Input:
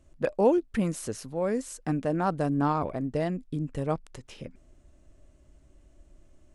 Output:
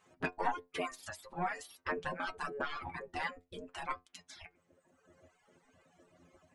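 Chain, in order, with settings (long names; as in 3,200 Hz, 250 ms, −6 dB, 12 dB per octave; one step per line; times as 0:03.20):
mid-hump overdrive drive 11 dB, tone 1,300 Hz, clips at −11.5 dBFS
gate on every frequency bin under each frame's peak −15 dB weak
in parallel at +1 dB: downward compressor, threshold −41 dBFS, peak gain reduction 10.5 dB
on the sum: stiff-string resonator 86 Hz, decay 0.23 s, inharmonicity 0.002
reverb reduction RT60 1.4 s
every ending faded ahead of time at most 370 dB per second
level +8 dB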